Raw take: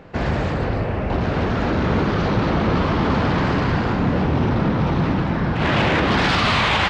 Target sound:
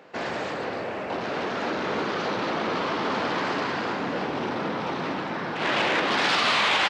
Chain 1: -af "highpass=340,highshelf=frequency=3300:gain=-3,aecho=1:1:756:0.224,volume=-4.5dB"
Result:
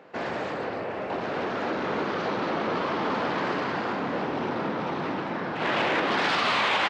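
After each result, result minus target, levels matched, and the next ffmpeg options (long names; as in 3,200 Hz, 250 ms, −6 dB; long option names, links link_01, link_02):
echo 233 ms late; 8,000 Hz band −5.5 dB
-af "highpass=340,highshelf=frequency=3300:gain=-3,aecho=1:1:523:0.224,volume=-4.5dB"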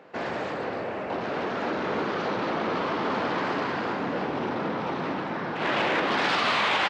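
8,000 Hz band −5.5 dB
-af "highpass=340,highshelf=frequency=3300:gain=5.5,aecho=1:1:523:0.224,volume=-4.5dB"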